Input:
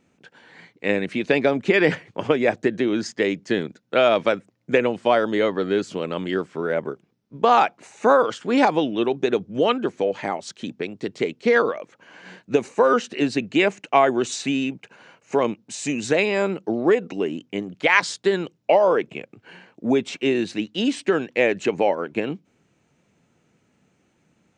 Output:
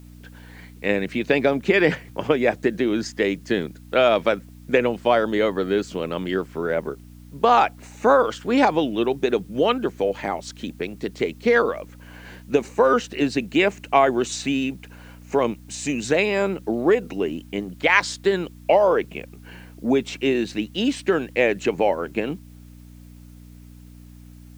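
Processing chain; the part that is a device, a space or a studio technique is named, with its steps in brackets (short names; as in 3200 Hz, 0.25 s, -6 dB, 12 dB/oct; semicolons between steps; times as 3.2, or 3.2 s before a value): video cassette with head-switching buzz (buzz 60 Hz, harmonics 5, -44 dBFS -4 dB/oct; white noise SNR 37 dB)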